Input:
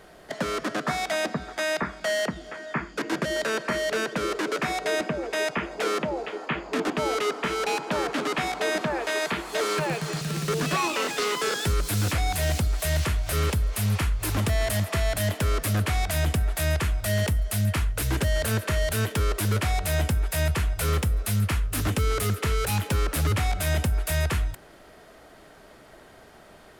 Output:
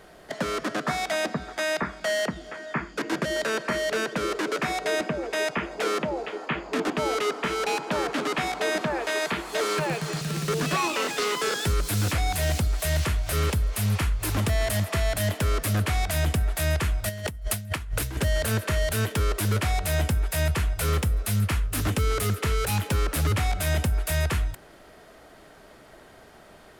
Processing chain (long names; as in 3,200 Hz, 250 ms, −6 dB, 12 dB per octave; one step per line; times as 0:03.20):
0:17.09–0:18.17: compressor whose output falls as the input rises −29 dBFS, ratio −0.5